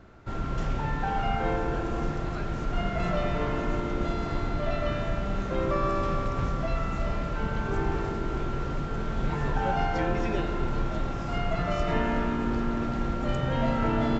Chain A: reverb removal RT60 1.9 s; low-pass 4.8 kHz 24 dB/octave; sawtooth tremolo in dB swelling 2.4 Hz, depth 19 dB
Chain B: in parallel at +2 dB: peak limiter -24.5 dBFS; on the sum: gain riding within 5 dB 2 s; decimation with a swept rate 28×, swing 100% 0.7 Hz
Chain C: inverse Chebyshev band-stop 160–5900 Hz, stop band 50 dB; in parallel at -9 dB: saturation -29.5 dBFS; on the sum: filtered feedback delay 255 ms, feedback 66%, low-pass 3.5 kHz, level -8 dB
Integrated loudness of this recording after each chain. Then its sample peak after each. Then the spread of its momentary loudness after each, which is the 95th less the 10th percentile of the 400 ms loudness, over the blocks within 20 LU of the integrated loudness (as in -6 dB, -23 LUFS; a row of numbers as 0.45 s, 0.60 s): -40.0 LUFS, -25.0 LUFS, -36.5 LUFS; -18.0 dBFS, -11.0 dBFS, -18.0 dBFS; 6 LU, 3 LU, 3 LU